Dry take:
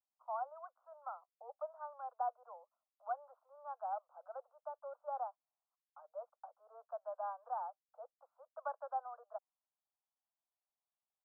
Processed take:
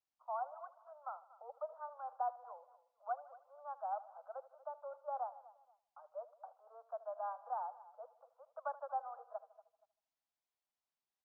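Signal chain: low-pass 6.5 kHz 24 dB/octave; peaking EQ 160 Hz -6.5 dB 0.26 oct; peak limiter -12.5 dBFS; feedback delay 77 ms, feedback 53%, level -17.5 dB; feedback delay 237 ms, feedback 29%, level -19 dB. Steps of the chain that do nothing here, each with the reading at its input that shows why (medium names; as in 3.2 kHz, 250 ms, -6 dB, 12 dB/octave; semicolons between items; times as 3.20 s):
low-pass 6.5 kHz: input has nothing above 1.5 kHz; peaking EQ 160 Hz: input has nothing below 430 Hz; peak limiter -12.5 dBFS: peak at its input -27.5 dBFS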